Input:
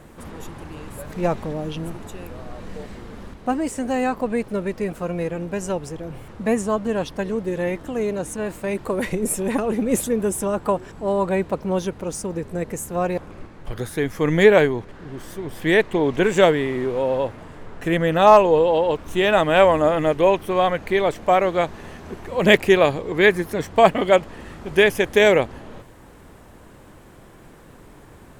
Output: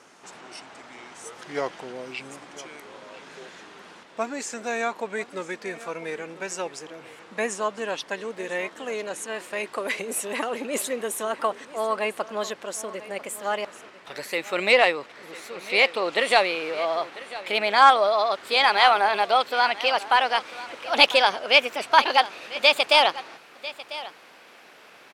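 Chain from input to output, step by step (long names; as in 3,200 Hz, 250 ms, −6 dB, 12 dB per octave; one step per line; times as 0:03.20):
gliding playback speed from 77% → 149%
high-pass filter 310 Hz 12 dB per octave
tilt shelving filter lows −7.5 dB
in parallel at −7 dB: soft clipping −11 dBFS, distortion −10 dB
on the sum: high-frequency loss of the air 56 metres
on a send: single-tap delay 996 ms −17 dB
on the sum: level −4.5 dB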